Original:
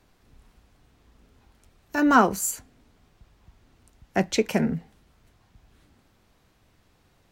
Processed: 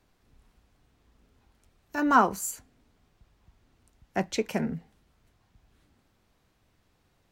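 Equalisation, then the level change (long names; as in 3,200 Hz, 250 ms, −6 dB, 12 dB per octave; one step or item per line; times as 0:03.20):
dynamic equaliser 1,000 Hz, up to +6 dB, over −33 dBFS, Q 1.7
−6.0 dB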